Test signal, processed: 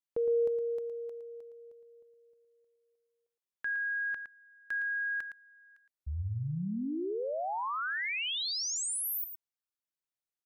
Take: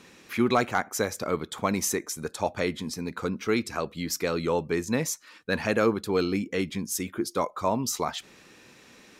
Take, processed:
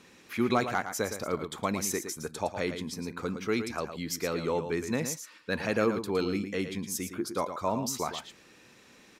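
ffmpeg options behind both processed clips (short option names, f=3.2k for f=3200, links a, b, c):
-af "aecho=1:1:113:0.355,volume=-4dB"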